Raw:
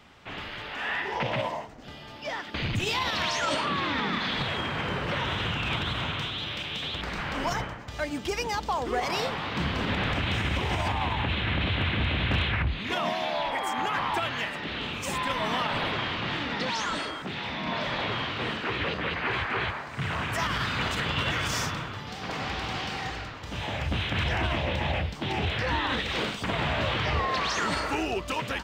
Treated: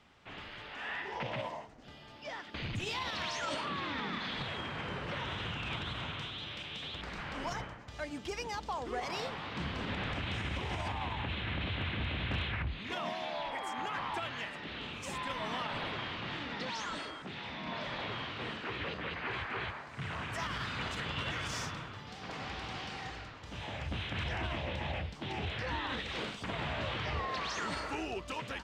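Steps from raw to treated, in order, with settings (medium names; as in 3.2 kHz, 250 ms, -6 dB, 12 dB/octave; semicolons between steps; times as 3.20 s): low-pass 11 kHz 12 dB/octave; trim -9 dB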